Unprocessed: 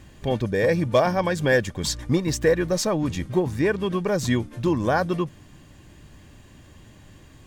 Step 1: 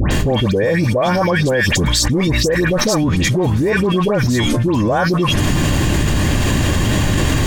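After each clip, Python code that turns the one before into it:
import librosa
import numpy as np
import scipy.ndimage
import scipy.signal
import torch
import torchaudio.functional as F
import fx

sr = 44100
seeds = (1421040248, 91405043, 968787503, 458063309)

y = fx.dispersion(x, sr, late='highs', ms=112.0, hz=1700.0)
y = fx.env_flatten(y, sr, amount_pct=100)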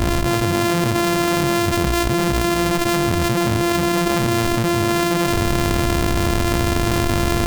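y = np.r_[np.sort(x[:len(x) // 128 * 128].reshape(-1, 128), axis=1).ravel(), x[len(x) // 128 * 128:]]
y = y * librosa.db_to_amplitude(-3.0)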